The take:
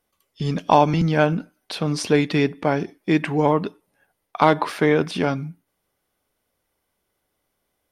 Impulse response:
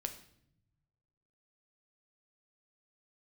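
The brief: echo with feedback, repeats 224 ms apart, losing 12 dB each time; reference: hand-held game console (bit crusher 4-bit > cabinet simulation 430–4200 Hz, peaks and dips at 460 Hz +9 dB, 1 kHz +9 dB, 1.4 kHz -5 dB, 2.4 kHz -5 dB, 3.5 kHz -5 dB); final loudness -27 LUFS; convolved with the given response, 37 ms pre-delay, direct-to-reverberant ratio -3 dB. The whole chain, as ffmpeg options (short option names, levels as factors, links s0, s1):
-filter_complex "[0:a]aecho=1:1:224|448|672:0.251|0.0628|0.0157,asplit=2[s0][s1];[1:a]atrim=start_sample=2205,adelay=37[s2];[s1][s2]afir=irnorm=-1:irlink=0,volume=1.58[s3];[s0][s3]amix=inputs=2:normalize=0,acrusher=bits=3:mix=0:aa=0.000001,highpass=430,equalizer=f=460:t=q:w=4:g=9,equalizer=f=1000:t=q:w=4:g=9,equalizer=f=1400:t=q:w=4:g=-5,equalizer=f=2400:t=q:w=4:g=-5,equalizer=f=3500:t=q:w=4:g=-5,lowpass=f=4200:w=0.5412,lowpass=f=4200:w=1.3066,volume=0.237"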